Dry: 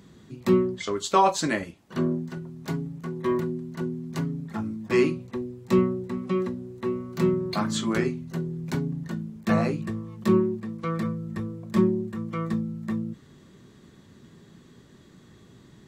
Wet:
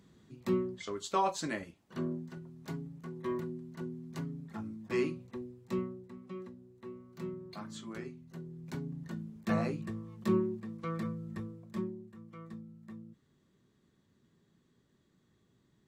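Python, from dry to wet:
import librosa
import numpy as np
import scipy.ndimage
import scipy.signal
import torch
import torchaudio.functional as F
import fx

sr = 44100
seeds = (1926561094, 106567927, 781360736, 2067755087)

y = fx.gain(x, sr, db=fx.line((5.43, -10.5), (6.12, -18.0), (8.05, -18.0), (9.18, -8.5), (11.37, -8.5), (11.98, -19.0)))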